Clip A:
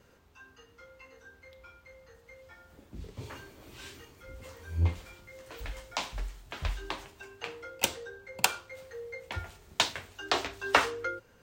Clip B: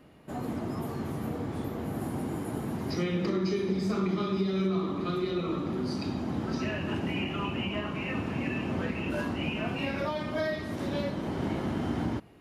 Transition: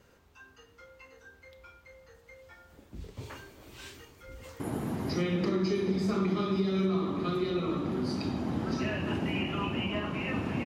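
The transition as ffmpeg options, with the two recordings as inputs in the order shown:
-filter_complex "[0:a]apad=whole_dur=10.65,atrim=end=10.65,atrim=end=4.602[a];[1:a]atrim=start=2.408:end=8.46[b];[a][b]acrossfade=d=0.004:c1=hsin:c2=hsin,asplit=2[c][d];[d]afade=t=in:st=3.94:d=0.01,afade=t=out:st=4.6:d=0.01,aecho=0:1:370|740|1110|1480:0.316228|0.126491|0.0505964|0.0202386[e];[c][e]amix=inputs=2:normalize=0"

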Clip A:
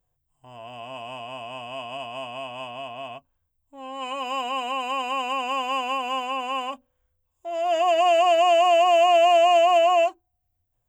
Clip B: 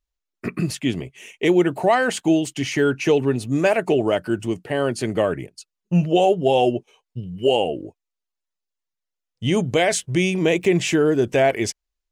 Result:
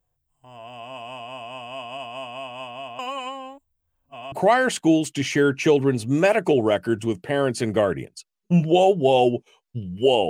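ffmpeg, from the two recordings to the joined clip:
-filter_complex "[0:a]apad=whole_dur=10.29,atrim=end=10.29,asplit=2[a][b];[a]atrim=end=2.992[c];[b]atrim=start=2.988:end=4.322,asetpts=PTS-STARTPTS,areverse[d];[1:a]atrim=start=1.728:end=7.7[e];[c][d]acrossfade=d=0.004:c1=hsin:c2=hsin[f];[f][e]acrossfade=d=0.004:c1=hsin:c2=hsin"

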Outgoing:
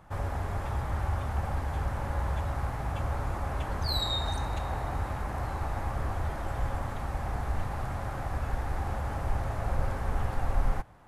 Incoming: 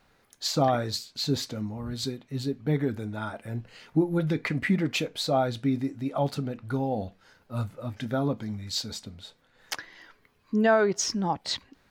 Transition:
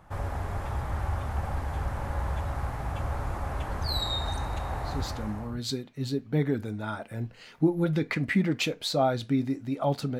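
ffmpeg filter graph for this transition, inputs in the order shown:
-filter_complex "[0:a]apad=whole_dur=10.19,atrim=end=10.19,atrim=end=5.58,asetpts=PTS-STARTPTS[a];[1:a]atrim=start=1.16:end=6.53,asetpts=PTS-STARTPTS[b];[a][b]acrossfade=d=0.76:c1=qsin:c2=qsin"

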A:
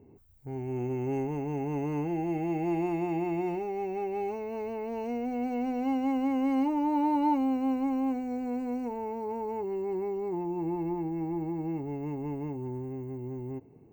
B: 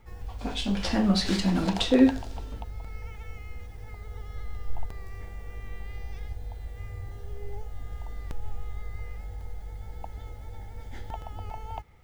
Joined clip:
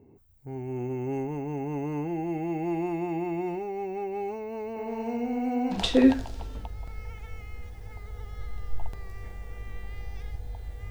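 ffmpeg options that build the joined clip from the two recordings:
-filter_complex "[0:a]asettb=1/sr,asplit=3[a][b][c];[a]atrim=end=4.674[d];[b]atrim=start=4.67:end=5.81,asetpts=PTS-STARTPTS,afade=t=in:d=0.004:c=qsin,afade=t=out:st=1.136:d=0.004:c=qsin,aecho=1:1:93|186|279|372|465|558|651:0.708|0.375|0.199|0.105|0.0559|0.0296|0.0157,atrim=end_sample=50274[e];[c]atrim=start=5.806[f];[d][e]acrossfade=d=0.004:c1=hsin:c2=qsin[g];[g][f]acrossfade=d=0.004:c1=qsin:c2=hsin,apad=whole_dur=10.9,atrim=end=10.9,atrim=end=5.81,asetpts=PTS-STARTPTS[h];[1:a]atrim=start=1.66:end=6.87,asetpts=PTS-STARTPTS[i];[h][i]acrossfade=d=0.12:c1=tri:c2=tri"

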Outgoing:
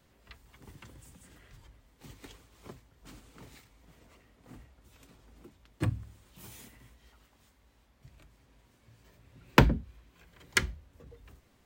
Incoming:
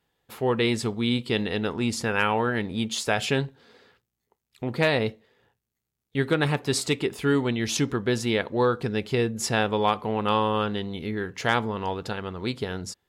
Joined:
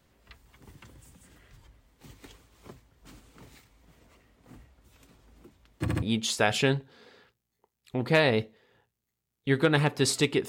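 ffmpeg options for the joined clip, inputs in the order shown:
-filter_complex "[0:a]apad=whole_dur=10.48,atrim=end=10.48,asplit=3[a][b][c];[a]atrim=end=5.882[d];[b]atrim=start=5.808:end=5.882[e];[c]atrim=start=5.808:end=5.882[f];[1:a]atrim=start=2.698:end=7.16[g];[d][e]acrossfade=d=0.004:c1=hsin:c2=hsin[h];[h][f]acrossfade=d=0.004:c1=hsin:c2=hsin[i];[i][g]acrossfade=d=0.004:c1=hsin:c2=hsin"

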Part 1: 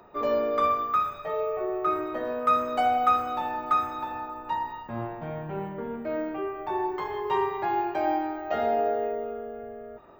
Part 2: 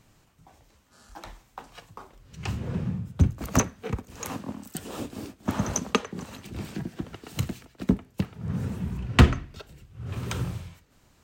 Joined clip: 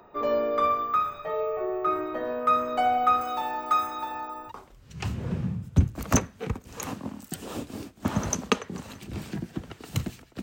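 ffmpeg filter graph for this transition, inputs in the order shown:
-filter_complex "[0:a]asettb=1/sr,asplit=3[a][b][c];[a]atrim=end=3.214[d];[b]atrim=start=3.21:end=4.52,asetpts=PTS-STARTPTS,afade=t=in:d=0.004:c=qsin,afade=t=out:st=1.306:d=0.004:c=qsin,bass=f=250:g=-6,treble=f=4k:g=11[e];[c]atrim=start=4.516[f];[d][e]acrossfade=d=0.004:c1=hsin:c2=qsin[g];[g][f]acrossfade=d=0.004:c1=qsin:c2=hsin,apad=whole_dur=10.42,atrim=end=10.42,atrim=end=4.52,asetpts=PTS-STARTPTS[h];[1:a]atrim=start=1.89:end=7.85,asetpts=PTS-STARTPTS[i];[h][i]acrossfade=d=0.06:c1=tri:c2=tri"

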